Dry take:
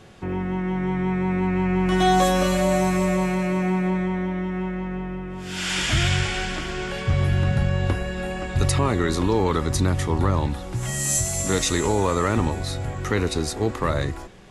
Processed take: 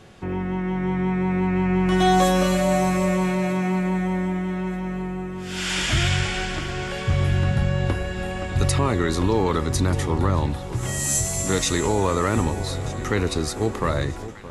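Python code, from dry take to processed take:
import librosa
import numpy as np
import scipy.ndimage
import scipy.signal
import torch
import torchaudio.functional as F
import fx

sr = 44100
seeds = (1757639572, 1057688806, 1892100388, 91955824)

y = fx.echo_alternate(x, sr, ms=618, hz=960.0, feedback_pct=60, wet_db=-13.5)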